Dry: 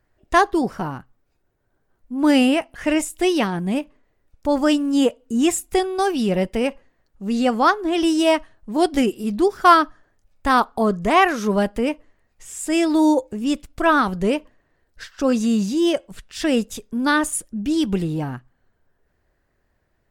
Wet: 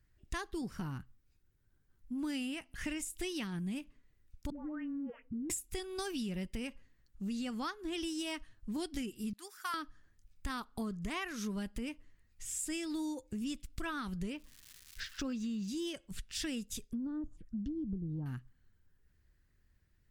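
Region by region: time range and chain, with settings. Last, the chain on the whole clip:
4.5–5.5 elliptic low-pass 2000 Hz, stop band 50 dB + dispersion highs, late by 0.123 s, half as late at 680 Hz + compressor 5:1, threshold -28 dBFS
9.33–9.74 HPF 1400 Hz + bell 3700 Hz -9.5 dB 2 oct
14.32–15.67 air absorption 120 m + crackle 400/s -45 dBFS + mismatched tape noise reduction encoder only
16.84–18.26 treble ducked by the level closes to 410 Hz, closed at -17.5 dBFS + envelope phaser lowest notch 160 Hz, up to 2400 Hz, full sweep at -26 dBFS
whole clip: passive tone stack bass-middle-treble 6-0-2; compressor 10:1, threshold -47 dBFS; gain +11.5 dB

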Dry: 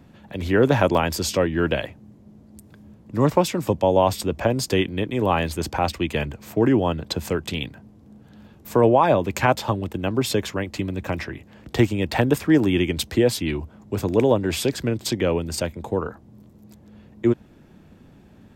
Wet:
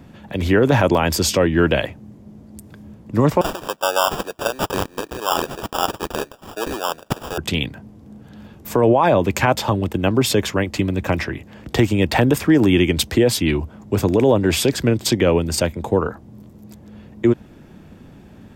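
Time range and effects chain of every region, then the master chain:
3.41–7.38 HPF 910 Hz + sample-rate reducer 2100 Hz
whole clip: notch 4100 Hz, Q 27; limiter -12 dBFS; gain +6.5 dB

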